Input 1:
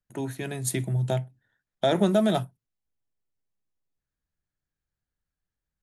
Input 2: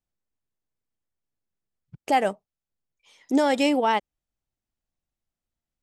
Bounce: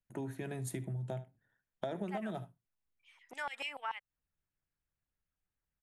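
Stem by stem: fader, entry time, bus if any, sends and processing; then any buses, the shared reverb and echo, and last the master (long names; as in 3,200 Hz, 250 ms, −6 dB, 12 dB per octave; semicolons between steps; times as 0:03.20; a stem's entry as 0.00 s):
−3.5 dB, 0.00 s, no send, echo send −18 dB, parametric band 4,200 Hz −4.5 dB 1.2 octaves
−5.5 dB, 0.00 s, no send, no echo send, auto-filter high-pass saw down 6.9 Hz 960–3,700 Hz; flat-topped bell 4,900 Hz −8.5 dB 1.3 octaves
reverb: not used
echo: single-tap delay 74 ms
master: high-shelf EQ 3,400 Hz −7.5 dB; downward compressor 5 to 1, threshold −37 dBFS, peak gain reduction 16.5 dB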